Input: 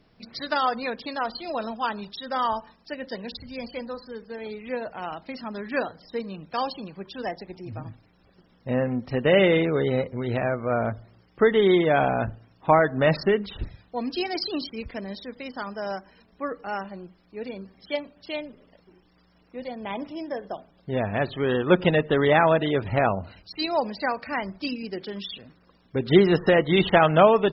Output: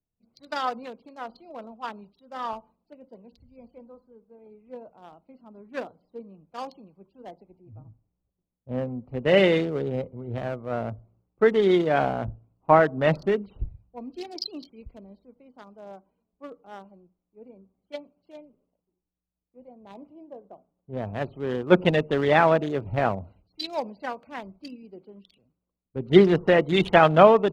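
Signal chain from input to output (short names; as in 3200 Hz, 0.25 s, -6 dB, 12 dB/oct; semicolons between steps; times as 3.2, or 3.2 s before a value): Wiener smoothing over 25 samples; three-band expander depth 70%; gain -4 dB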